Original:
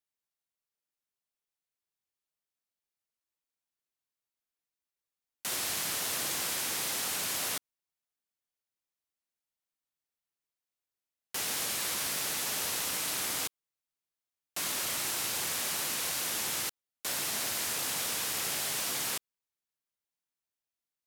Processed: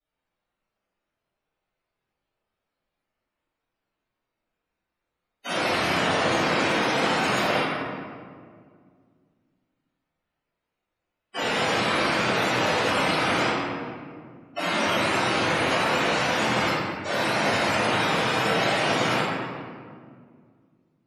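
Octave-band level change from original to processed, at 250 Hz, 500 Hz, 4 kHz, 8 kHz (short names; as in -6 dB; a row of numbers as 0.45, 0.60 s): +20.0, +20.0, +7.0, -6.5 dB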